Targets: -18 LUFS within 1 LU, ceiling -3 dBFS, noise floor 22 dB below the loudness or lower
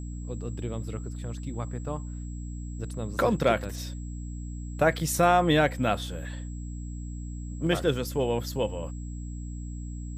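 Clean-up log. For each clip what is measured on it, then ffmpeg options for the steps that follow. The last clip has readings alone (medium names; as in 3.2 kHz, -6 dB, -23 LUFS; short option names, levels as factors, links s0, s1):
hum 60 Hz; highest harmonic 300 Hz; hum level -34 dBFS; steady tone 7.7 kHz; tone level -52 dBFS; loudness -29.5 LUFS; peak level -10.5 dBFS; loudness target -18.0 LUFS
-> -af "bandreject=f=60:t=h:w=6,bandreject=f=120:t=h:w=6,bandreject=f=180:t=h:w=6,bandreject=f=240:t=h:w=6,bandreject=f=300:t=h:w=6"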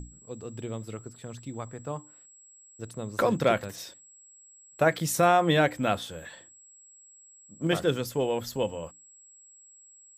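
hum not found; steady tone 7.7 kHz; tone level -52 dBFS
-> -af "bandreject=f=7700:w=30"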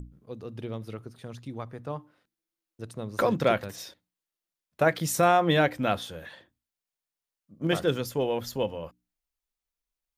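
steady tone not found; loudness -27.5 LUFS; peak level -10.0 dBFS; loudness target -18.0 LUFS
-> -af "volume=2.99,alimiter=limit=0.708:level=0:latency=1"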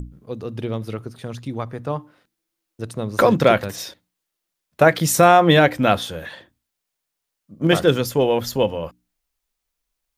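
loudness -18.5 LUFS; peak level -3.0 dBFS; noise floor -81 dBFS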